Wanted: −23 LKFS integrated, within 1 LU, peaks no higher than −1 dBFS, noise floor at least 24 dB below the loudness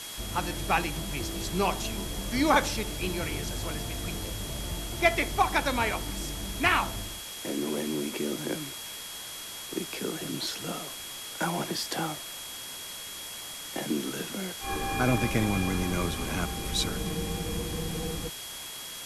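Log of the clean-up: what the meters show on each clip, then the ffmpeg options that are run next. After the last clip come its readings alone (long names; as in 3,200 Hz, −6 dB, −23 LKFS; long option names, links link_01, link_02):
interfering tone 3,300 Hz; level of the tone −43 dBFS; background noise floor −40 dBFS; target noise floor −55 dBFS; integrated loudness −30.5 LKFS; sample peak −10.0 dBFS; target loudness −23.0 LKFS
→ -af "bandreject=frequency=3300:width=30"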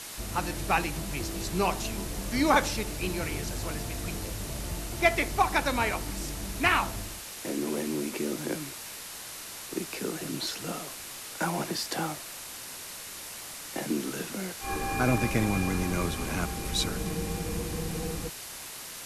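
interfering tone none found; background noise floor −42 dBFS; target noise floor −55 dBFS
→ -af "afftdn=noise_reduction=13:noise_floor=-42"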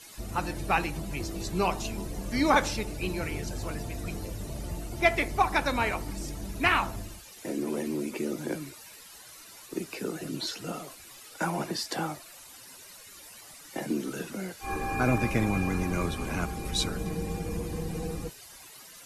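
background noise floor −49 dBFS; target noise floor −55 dBFS
→ -af "afftdn=noise_reduction=6:noise_floor=-49"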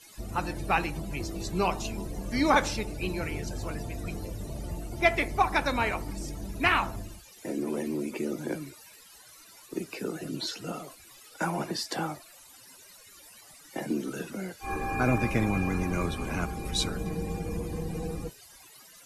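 background noise floor −53 dBFS; target noise floor −55 dBFS
→ -af "afftdn=noise_reduction=6:noise_floor=-53"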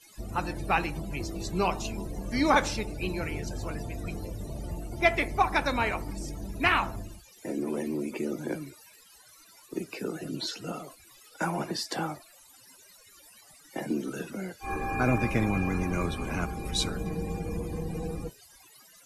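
background noise floor −56 dBFS; integrated loudness −31.0 LKFS; sample peak −10.0 dBFS; target loudness −23.0 LKFS
→ -af "volume=8dB"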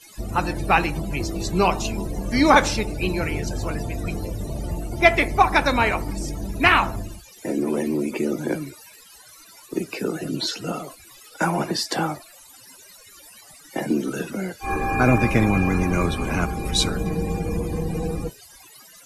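integrated loudness −23.0 LKFS; sample peak −2.0 dBFS; background noise floor −48 dBFS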